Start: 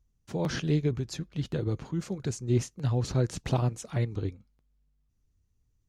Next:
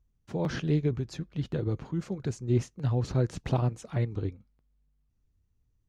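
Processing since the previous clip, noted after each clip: high shelf 4200 Hz -10 dB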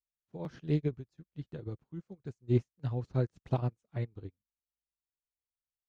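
upward expander 2.5:1, over -46 dBFS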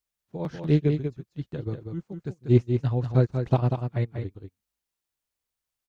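echo 0.191 s -6.5 dB; gain +8.5 dB

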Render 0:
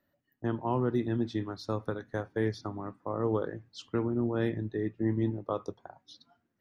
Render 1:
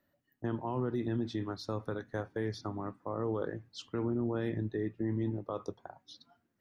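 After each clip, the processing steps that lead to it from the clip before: limiter -24.5 dBFS, peak gain reduction 7.5 dB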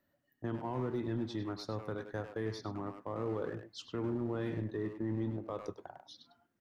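in parallel at -7.5 dB: hard clip -35.5 dBFS, distortion -7 dB; on the sum: speakerphone echo 0.1 s, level -6 dB; gain -4.5 dB

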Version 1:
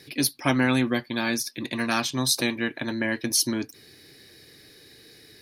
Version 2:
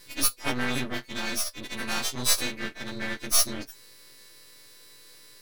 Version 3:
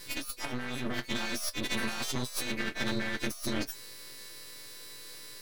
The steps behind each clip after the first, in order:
frequency quantiser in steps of 2 st; half-wave rectifier; gain -3 dB
negative-ratio compressor -34 dBFS, ratio -1

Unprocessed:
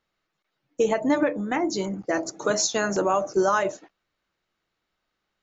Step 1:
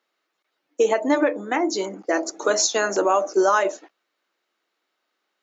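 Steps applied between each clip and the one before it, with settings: HPF 280 Hz 24 dB/oct; gain +3.5 dB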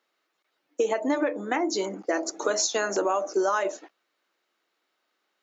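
compressor 2.5:1, threshold -24 dBFS, peak gain reduction 7 dB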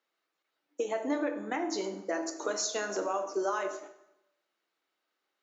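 plate-style reverb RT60 0.86 s, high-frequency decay 0.8×, DRR 6.5 dB; gain -7.5 dB

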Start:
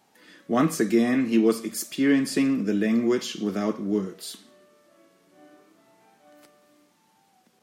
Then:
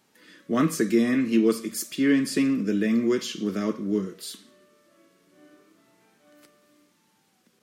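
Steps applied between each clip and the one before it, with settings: bell 770 Hz -11.5 dB 0.44 oct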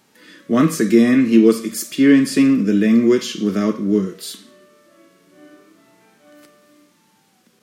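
harmonic-percussive split harmonic +5 dB; gain +4.5 dB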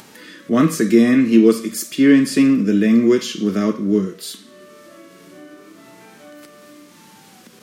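upward compressor, threshold -33 dBFS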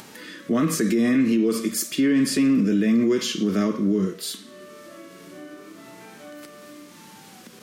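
limiter -13 dBFS, peak gain reduction 11.5 dB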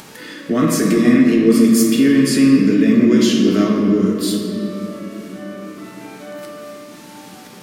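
shoebox room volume 140 m³, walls hard, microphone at 0.41 m; gain +4 dB

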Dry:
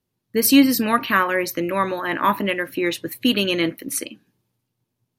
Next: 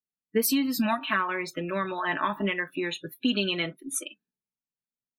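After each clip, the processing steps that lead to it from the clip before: spectral noise reduction 25 dB; compressor 5:1, threshold -20 dBFS, peak gain reduction 10.5 dB; comb 4.6 ms, depth 64%; gain -4 dB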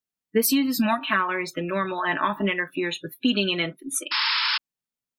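painted sound noise, 4.11–4.58, 860–5400 Hz -27 dBFS; gain +3.5 dB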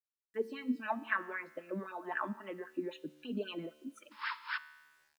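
wah 3.8 Hz 220–1700 Hz, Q 3.9; resonator 75 Hz, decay 1.3 s, harmonics all, mix 50%; bit-crush 12-bit; gain +1.5 dB

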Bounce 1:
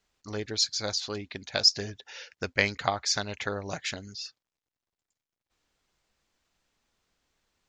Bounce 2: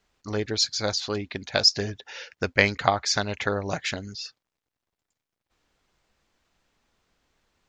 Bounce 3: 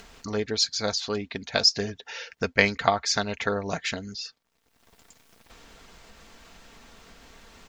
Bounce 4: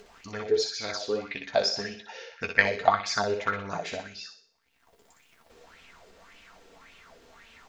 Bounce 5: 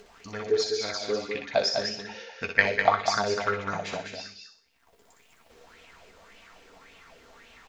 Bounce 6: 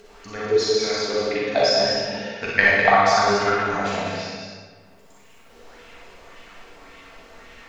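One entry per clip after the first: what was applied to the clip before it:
high shelf 3600 Hz -6.5 dB; gain +6.5 dB
comb 4.4 ms, depth 36%; upward compressor, threshold -31 dBFS; gain -1 dB
flange 0.31 Hz, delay 9.7 ms, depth 5.3 ms, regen +36%; on a send: thinning echo 61 ms, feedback 44%, high-pass 160 Hz, level -5 dB; on the sum: LFO bell 1.8 Hz 400–2800 Hz +15 dB; gain -5 dB
echo 0.201 s -6 dB
reverb RT60 1.6 s, pre-delay 34 ms, DRR -5 dB; gain +1.5 dB

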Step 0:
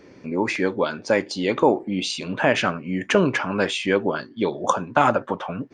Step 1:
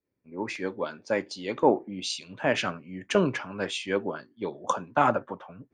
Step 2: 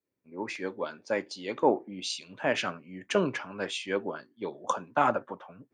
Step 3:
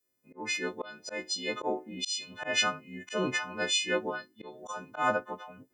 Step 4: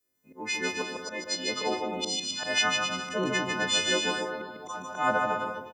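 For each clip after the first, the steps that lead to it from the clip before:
three-band expander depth 100%; gain -8 dB
low shelf 110 Hz -11 dB; gain -2 dB
frequency quantiser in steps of 3 st; auto swell 0.174 s
bouncing-ball echo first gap 0.15 s, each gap 0.75×, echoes 5; on a send at -18 dB: reverb RT60 1.1 s, pre-delay 3 ms; on the sum: gain +1 dB

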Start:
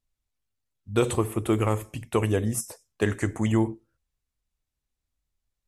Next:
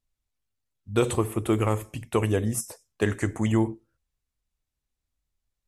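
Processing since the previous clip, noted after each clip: nothing audible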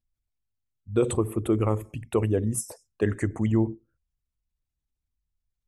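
formant sharpening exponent 1.5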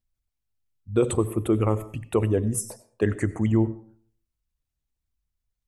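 reverb RT60 0.50 s, pre-delay 55 ms, DRR 17 dB; gain +1.5 dB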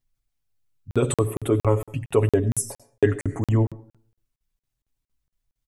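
comb 7.2 ms, depth 74%; crackling interface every 0.23 s, samples 2048, zero, from 0.91; gain +1.5 dB

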